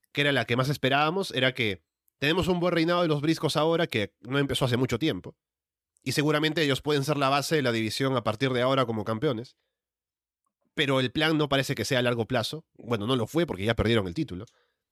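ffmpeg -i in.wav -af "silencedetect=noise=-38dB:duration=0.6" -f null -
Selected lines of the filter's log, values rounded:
silence_start: 5.29
silence_end: 6.07 | silence_duration: 0.77
silence_start: 9.46
silence_end: 10.77 | silence_duration: 1.32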